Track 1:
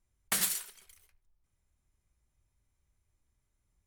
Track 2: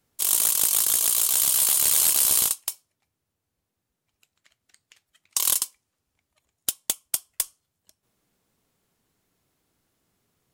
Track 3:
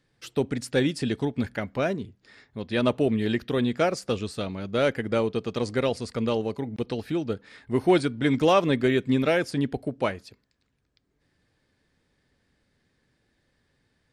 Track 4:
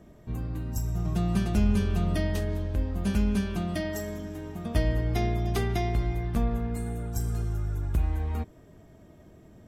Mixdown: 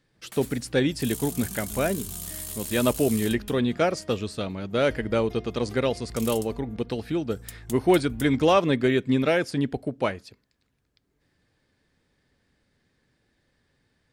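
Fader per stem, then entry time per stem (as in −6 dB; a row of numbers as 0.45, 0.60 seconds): −14.0, −16.0, +0.5, −16.5 decibels; 0.00, 0.80, 0.00, 0.15 seconds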